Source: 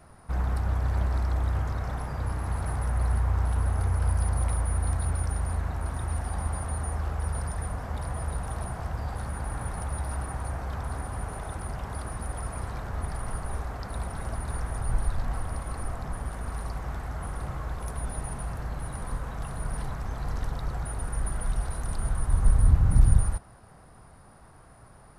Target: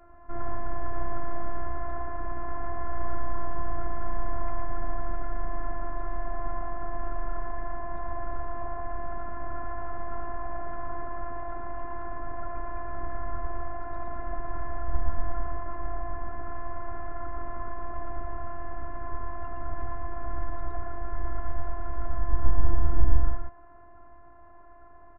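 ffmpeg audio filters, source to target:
-af "lowpass=f=1.7k:w=0.5412,lowpass=f=1.7k:w=1.3066,afftfilt=real='hypot(re,im)*cos(PI*b)':imag='0':win_size=512:overlap=0.75,aecho=1:1:115:0.668,volume=4dB"

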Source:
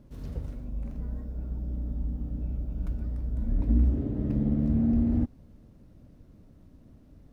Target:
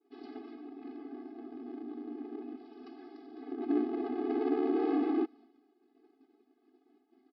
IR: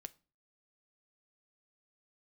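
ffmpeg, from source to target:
-filter_complex "[0:a]agate=range=-33dB:threshold=-45dB:ratio=3:detection=peak,asettb=1/sr,asplit=3[a][b][c];[a]atrim=end=2.574[d];[b]atrim=start=2.57:end=3.52,asetpts=PTS-STARTPTS,afade=t=in:d=0.004:c=qsin,afade=t=out:st=0.946:d=0.004:c=qsin,aemphasis=mode=production:type=bsi[e];[c]atrim=start=3.516[f];[d][e]acrossfade=d=0.004:c1=hsin:c2=qsin[g];[g][f]acrossfade=d=0.004:c1=qsin:c2=hsin,aeval=exprs='abs(val(0))':c=same,aresample=11025,aresample=44100,afftfilt=real='re*eq(mod(floor(b*sr/1024/220),2),1)':imag='im*eq(mod(floor(b*sr/1024/220),2),1)':win_size=1024:overlap=0.75,volume=4dB"

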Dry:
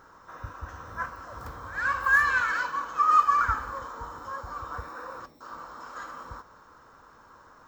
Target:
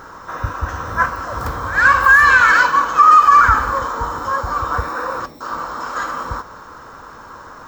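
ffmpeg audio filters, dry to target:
-af "alimiter=level_in=17.5dB:limit=-1dB:release=50:level=0:latency=1,volume=-1dB"

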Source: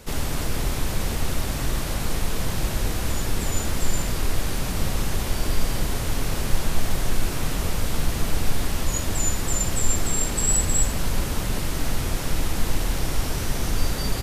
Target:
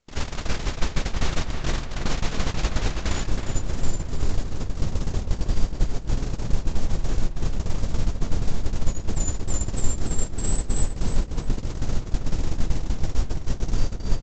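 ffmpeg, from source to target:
-filter_complex "[0:a]acompressor=threshold=-20dB:ratio=4,agate=range=-46dB:threshold=-22dB:ratio=16:detection=peak,asetnsamples=n=441:p=0,asendcmd='3.28 equalizer g -9',equalizer=f=2.3k:w=0.36:g=3,asplit=2[a][b];[b]adelay=319,lowpass=f=3.6k:p=1,volume=-6dB,asplit=2[c][d];[d]adelay=319,lowpass=f=3.6k:p=1,volume=0.5,asplit=2[e][f];[f]adelay=319,lowpass=f=3.6k:p=1,volume=0.5,asplit=2[g][h];[h]adelay=319,lowpass=f=3.6k:p=1,volume=0.5,asplit=2[i][j];[j]adelay=319,lowpass=f=3.6k:p=1,volume=0.5,asplit=2[k][l];[l]adelay=319,lowpass=f=3.6k:p=1,volume=0.5[m];[a][c][e][g][i][k][m]amix=inputs=7:normalize=0,volume=6.5dB" -ar 16000 -c:a pcm_mulaw

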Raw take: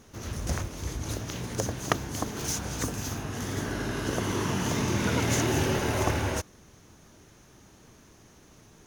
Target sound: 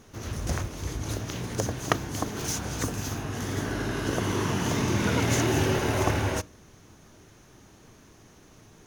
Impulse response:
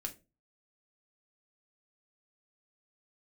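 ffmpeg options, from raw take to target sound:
-filter_complex "[0:a]asplit=2[a][b];[1:a]atrim=start_sample=2205,lowpass=5.4k[c];[b][c]afir=irnorm=-1:irlink=0,volume=-11dB[d];[a][d]amix=inputs=2:normalize=0"

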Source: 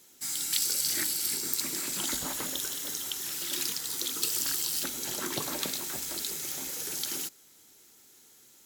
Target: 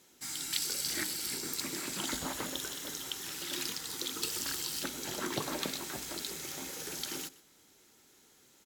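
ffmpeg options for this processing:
-filter_complex "[0:a]aemphasis=mode=reproduction:type=cd,asplit=2[a][b];[b]aecho=0:1:125:0.106[c];[a][c]amix=inputs=2:normalize=0"

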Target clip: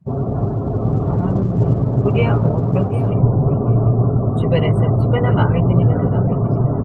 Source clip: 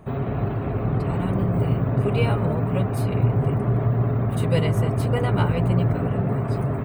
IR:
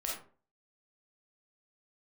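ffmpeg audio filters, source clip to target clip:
-filter_complex "[0:a]afftdn=nr=30:nf=-32,highpass=40,asplit=2[a][b];[b]adelay=750,lowpass=f=830:p=1,volume=-8.5dB,asplit=2[c][d];[d]adelay=750,lowpass=f=830:p=1,volume=0.53,asplit=2[e][f];[f]adelay=750,lowpass=f=830:p=1,volume=0.53,asplit=2[g][h];[h]adelay=750,lowpass=f=830:p=1,volume=0.53,asplit=2[i][j];[j]adelay=750,lowpass=f=830:p=1,volume=0.53,asplit=2[k][l];[l]adelay=750,lowpass=f=830:p=1,volume=0.53[m];[a][c][e][g][i][k][m]amix=inputs=7:normalize=0,volume=5.5dB" -ar 48000 -c:a libopus -b:a 16k

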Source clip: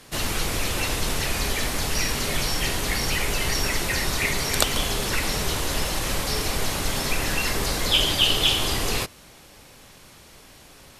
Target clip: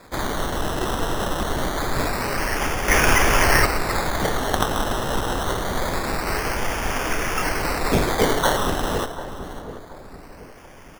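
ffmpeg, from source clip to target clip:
-filter_complex "[0:a]equalizer=f=170:w=1.4:g=-11.5,asplit=2[a][b];[b]aecho=0:1:562:0.178[c];[a][c]amix=inputs=2:normalize=0,asettb=1/sr,asplit=3[d][e][f];[d]atrim=end=2.884[g];[e]atrim=start=2.88:end=3.66,asetpts=PTS-STARTPTS,afade=t=in:d=0.004:c=qsin,afade=t=out:st=0.776:d=0.004:c=qsin,acontrast=82[h];[f]atrim=start=3.656[i];[g][h]acrossfade=d=0.004:c1=hsin:c2=qsin[j];[j][i]acrossfade=d=0.004:c1=qsin:c2=hsin,highshelf=f=8.6k:g=9.5,acrusher=samples=15:mix=1:aa=0.000001:lfo=1:lforange=9:lforate=0.25,asplit=2[k][l];[l]adelay=731,lowpass=f=950:p=1,volume=-11.5dB,asplit=2[m][n];[n]adelay=731,lowpass=f=950:p=1,volume=0.46,asplit=2[o][p];[p]adelay=731,lowpass=f=950:p=1,volume=0.46,asplit=2[q][r];[r]adelay=731,lowpass=f=950:p=1,volume=0.46,asplit=2[s][t];[t]adelay=731,lowpass=f=950:p=1,volume=0.46[u];[m][o][q][s][u]amix=inputs=5:normalize=0[v];[k][v]amix=inputs=2:normalize=0"

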